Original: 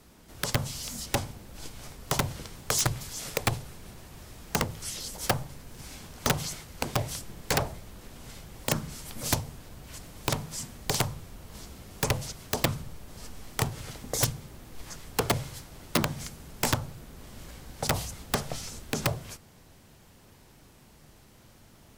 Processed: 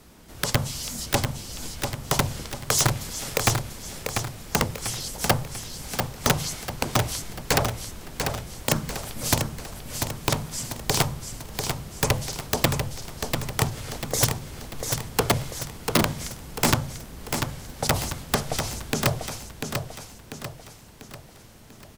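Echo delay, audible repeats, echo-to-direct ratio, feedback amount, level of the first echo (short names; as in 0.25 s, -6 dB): 0.693 s, 5, -5.0 dB, 46%, -6.0 dB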